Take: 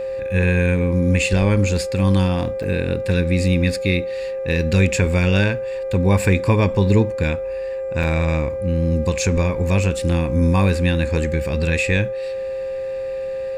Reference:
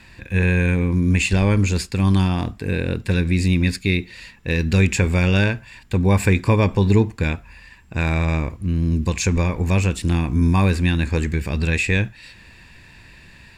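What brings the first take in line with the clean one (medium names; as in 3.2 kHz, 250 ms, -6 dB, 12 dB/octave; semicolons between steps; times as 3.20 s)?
de-hum 398.7 Hz, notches 6; band-stop 530 Hz, Q 30; interpolate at 2.63/8.03 s, 4.8 ms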